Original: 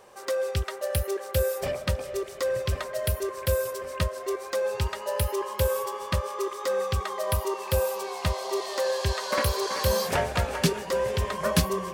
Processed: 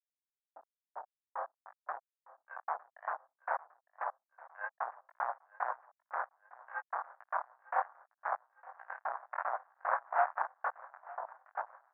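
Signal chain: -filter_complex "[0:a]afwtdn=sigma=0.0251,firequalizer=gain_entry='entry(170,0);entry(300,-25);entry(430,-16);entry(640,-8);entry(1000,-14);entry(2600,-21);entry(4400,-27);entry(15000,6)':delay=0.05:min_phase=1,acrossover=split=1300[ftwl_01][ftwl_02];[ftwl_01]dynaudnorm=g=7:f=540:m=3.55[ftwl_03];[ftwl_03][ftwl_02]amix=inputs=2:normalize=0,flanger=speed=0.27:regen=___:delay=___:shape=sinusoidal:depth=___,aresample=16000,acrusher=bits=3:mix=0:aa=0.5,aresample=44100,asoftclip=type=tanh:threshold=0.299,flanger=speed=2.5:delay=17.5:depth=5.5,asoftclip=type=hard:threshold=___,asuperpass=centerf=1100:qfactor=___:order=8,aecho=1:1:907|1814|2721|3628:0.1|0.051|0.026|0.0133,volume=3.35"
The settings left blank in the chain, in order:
50, 7.1, 8.8, 0.0531, 1.1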